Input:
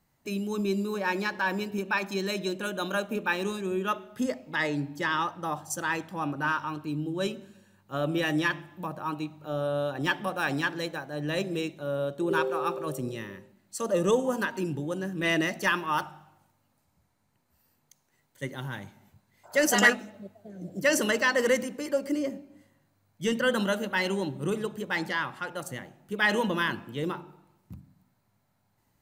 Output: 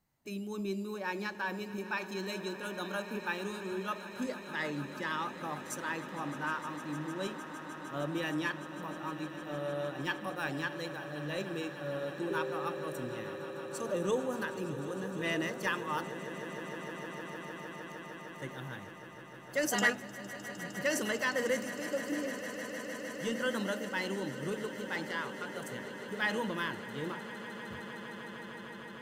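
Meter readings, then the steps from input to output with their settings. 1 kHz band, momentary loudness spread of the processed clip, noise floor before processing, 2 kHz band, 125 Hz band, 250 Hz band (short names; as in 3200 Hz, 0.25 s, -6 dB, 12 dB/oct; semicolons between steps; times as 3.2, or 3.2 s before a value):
-7.0 dB, 11 LU, -72 dBFS, -7.0 dB, -7.0 dB, -7.0 dB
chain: swelling echo 0.153 s, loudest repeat 8, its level -17 dB; gain -8 dB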